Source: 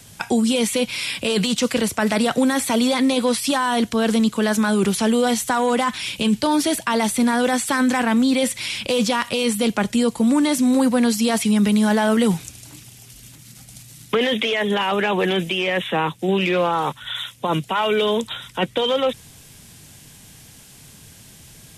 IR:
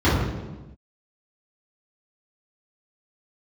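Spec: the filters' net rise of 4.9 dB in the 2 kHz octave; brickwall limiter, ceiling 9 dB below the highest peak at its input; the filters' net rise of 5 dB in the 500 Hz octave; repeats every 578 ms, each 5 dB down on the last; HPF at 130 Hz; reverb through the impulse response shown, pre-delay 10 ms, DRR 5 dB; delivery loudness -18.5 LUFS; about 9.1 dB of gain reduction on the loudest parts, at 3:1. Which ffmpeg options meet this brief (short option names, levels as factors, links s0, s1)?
-filter_complex "[0:a]highpass=130,equalizer=f=500:t=o:g=5.5,equalizer=f=2000:t=o:g=6,acompressor=threshold=0.0631:ratio=3,alimiter=limit=0.119:level=0:latency=1,aecho=1:1:578|1156|1734|2312|2890|3468|4046:0.562|0.315|0.176|0.0988|0.0553|0.031|0.0173,asplit=2[s0][s1];[1:a]atrim=start_sample=2205,adelay=10[s2];[s1][s2]afir=irnorm=-1:irlink=0,volume=0.0531[s3];[s0][s3]amix=inputs=2:normalize=0,volume=1.68"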